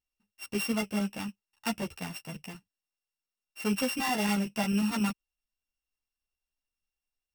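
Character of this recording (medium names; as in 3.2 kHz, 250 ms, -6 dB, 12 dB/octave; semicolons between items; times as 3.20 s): a buzz of ramps at a fixed pitch in blocks of 16 samples; chopped level 11 Hz, depth 60%, duty 90%; a shimmering, thickened sound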